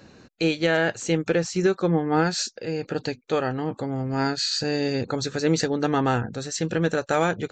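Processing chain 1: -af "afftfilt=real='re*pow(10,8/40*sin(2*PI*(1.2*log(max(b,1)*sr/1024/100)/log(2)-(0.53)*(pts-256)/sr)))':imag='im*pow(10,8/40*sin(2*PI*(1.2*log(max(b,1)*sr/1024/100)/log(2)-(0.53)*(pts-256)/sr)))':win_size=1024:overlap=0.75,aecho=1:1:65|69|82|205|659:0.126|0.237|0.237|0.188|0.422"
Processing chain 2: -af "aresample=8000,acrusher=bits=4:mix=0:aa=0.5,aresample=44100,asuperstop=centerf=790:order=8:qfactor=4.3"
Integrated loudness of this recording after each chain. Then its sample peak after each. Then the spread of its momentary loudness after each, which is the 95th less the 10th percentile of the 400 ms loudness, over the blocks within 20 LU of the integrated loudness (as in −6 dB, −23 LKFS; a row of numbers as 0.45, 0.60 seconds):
−22.5, −25.5 LKFS; −6.5, −10.0 dBFS; 6, 8 LU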